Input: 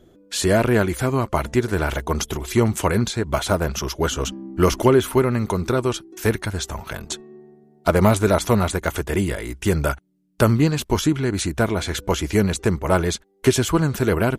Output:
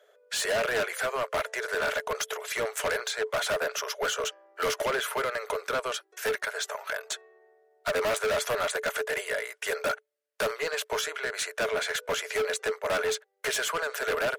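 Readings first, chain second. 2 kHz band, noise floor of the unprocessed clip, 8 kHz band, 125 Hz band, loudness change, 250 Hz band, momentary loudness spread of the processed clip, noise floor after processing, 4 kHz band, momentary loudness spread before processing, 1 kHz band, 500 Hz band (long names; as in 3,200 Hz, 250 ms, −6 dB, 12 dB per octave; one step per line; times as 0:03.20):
−1.0 dB, −55 dBFS, −5.5 dB, −30.0 dB, −8.5 dB, −25.5 dB, 5 LU, −69 dBFS, −3.0 dB, 9 LU, −7.0 dB, −8.0 dB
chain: Chebyshev high-pass with heavy ripple 420 Hz, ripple 9 dB
gain into a clipping stage and back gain 28.5 dB
level +4 dB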